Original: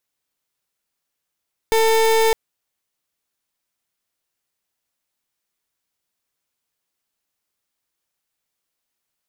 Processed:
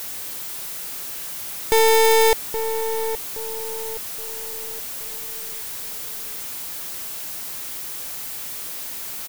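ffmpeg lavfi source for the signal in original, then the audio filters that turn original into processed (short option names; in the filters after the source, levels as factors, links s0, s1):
-f lavfi -i "aevalsrc='0.168*(2*lt(mod(447*t,1),0.31)-1)':d=0.61:s=44100"
-filter_complex "[0:a]aeval=exprs='val(0)+0.5*0.0316*sgn(val(0))':c=same,highshelf=f=9600:g=7.5,asplit=2[s0][s1];[s1]adelay=821,lowpass=f=980:p=1,volume=0.398,asplit=2[s2][s3];[s3]adelay=821,lowpass=f=980:p=1,volume=0.46,asplit=2[s4][s5];[s5]adelay=821,lowpass=f=980:p=1,volume=0.46,asplit=2[s6][s7];[s7]adelay=821,lowpass=f=980:p=1,volume=0.46,asplit=2[s8][s9];[s9]adelay=821,lowpass=f=980:p=1,volume=0.46[s10];[s2][s4][s6][s8][s10]amix=inputs=5:normalize=0[s11];[s0][s11]amix=inputs=2:normalize=0"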